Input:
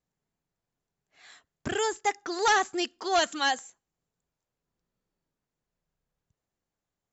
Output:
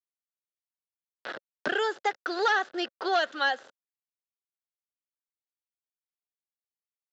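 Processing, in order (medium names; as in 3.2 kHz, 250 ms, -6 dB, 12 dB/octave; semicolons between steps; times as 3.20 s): send-on-delta sampling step -42 dBFS; cabinet simulation 390–4400 Hz, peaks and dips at 550 Hz +6 dB, 1 kHz -6 dB, 1.5 kHz +8 dB, 2.3 kHz -7 dB; three bands compressed up and down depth 70%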